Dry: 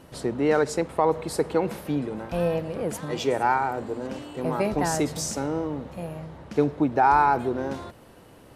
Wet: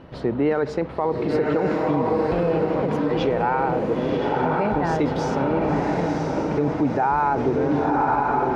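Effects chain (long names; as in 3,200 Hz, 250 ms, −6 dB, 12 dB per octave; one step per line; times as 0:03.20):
high-frequency loss of the air 280 metres
feedback delay with all-pass diffusion 1,017 ms, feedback 52%, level −3 dB
brickwall limiter −18.5 dBFS, peak gain reduction 9.5 dB
level +6 dB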